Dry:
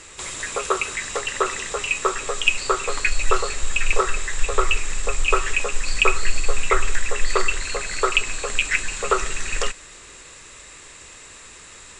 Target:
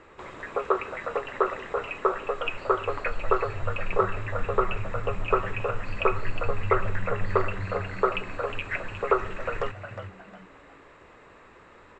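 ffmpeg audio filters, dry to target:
ffmpeg -i in.wav -filter_complex "[0:a]lowpass=1200,lowshelf=frequency=110:gain=-10.5,asplit=2[link_01][link_02];[link_02]asplit=4[link_03][link_04][link_05][link_06];[link_03]adelay=360,afreqshift=90,volume=-10dB[link_07];[link_04]adelay=720,afreqshift=180,volume=-19.9dB[link_08];[link_05]adelay=1080,afreqshift=270,volume=-29.8dB[link_09];[link_06]adelay=1440,afreqshift=360,volume=-39.7dB[link_10];[link_07][link_08][link_09][link_10]amix=inputs=4:normalize=0[link_11];[link_01][link_11]amix=inputs=2:normalize=0" out.wav

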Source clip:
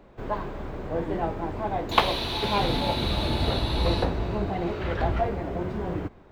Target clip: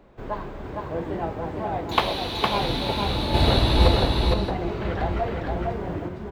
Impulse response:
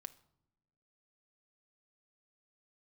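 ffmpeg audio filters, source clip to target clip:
-filter_complex "[0:a]asettb=1/sr,asplit=3[link_01][link_02][link_03];[link_01]atrim=end=3.344[link_04];[link_02]atrim=start=3.34:end=3.88,asetpts=PTS-STARTPTS,afade=type=in:duration=0.004:curve=qsin,afade=type=out:start_time=0.536:duration=0.004:curve=qsin,acontrast=90[link_05];[link_03]atrim=start=3.876[link_06];[link_04][link_05]acrossfade=duration=0.004:curve1=hsin:curve2=qsin[link_07];[link_07][link_06]acrossfade=duration=0.004:curve1=qsin:curve2=hsin,aecho=1:1:460:0.708,volume=-1dB"

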